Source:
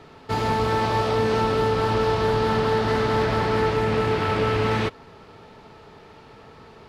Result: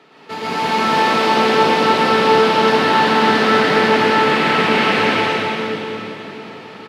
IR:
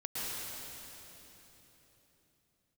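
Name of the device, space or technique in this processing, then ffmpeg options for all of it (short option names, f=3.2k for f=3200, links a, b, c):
stadium PA: -filter_complex "[0:a]highpass=f=180:w=0.5412,highpass=f=180:w=1.3066,equalizer=f=2.6k:t=o:w=1.5:g=6,aecho=1:1:163.3|285.7:0.316|0.891[a];[1:a]atrim=start_sample=2205[b];[a][b]afir=irnorm=-1:irlink=0,volume=1.5dB"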